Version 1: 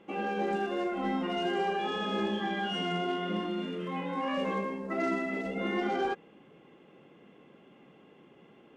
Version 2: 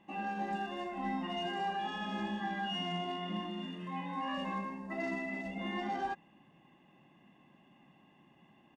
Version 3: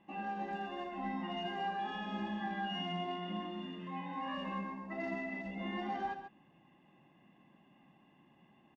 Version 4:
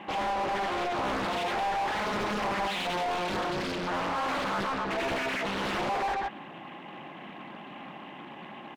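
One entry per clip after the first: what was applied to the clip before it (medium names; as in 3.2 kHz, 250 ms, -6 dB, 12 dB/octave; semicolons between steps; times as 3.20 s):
comb 1.1 ms, depth 83%; trim -7 dB
distance through air 110 m; delay 138 ms -9.5 dB; trim -2 dB
overdrive pedal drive 31 dB, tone 2 kHz, clips at -26.5 dBFS; loudspeaker Doppler distortion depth 0.98 ms; trim +3.5 dB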